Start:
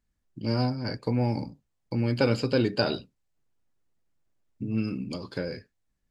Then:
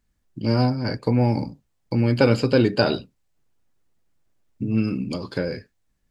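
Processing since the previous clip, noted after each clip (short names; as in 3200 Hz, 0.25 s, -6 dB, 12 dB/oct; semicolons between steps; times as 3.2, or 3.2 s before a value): dynamic EQ 5000 Hz, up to -3 dB, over -46 dBFS, Q 0.75; gain +6.5 dB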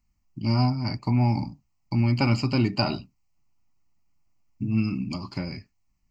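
fixed phaser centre 2400 Hz, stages 8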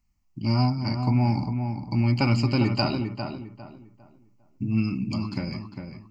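darkening echo 0.402 s, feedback 30%, low-pass 2300 Hz, level -6.5 dB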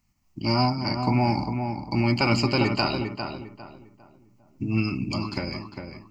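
spectral limiter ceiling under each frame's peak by 12 dB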